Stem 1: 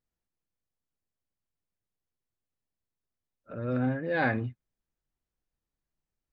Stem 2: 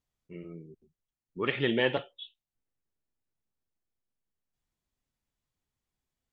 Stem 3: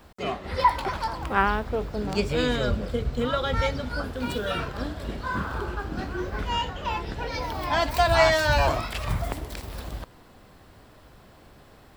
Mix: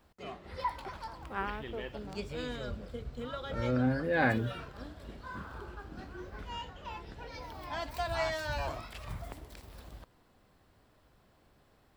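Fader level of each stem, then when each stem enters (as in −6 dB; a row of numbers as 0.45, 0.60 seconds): −0.5, −16.5, −14.0 decibels; 0.00, 0.00, 0.00 seconds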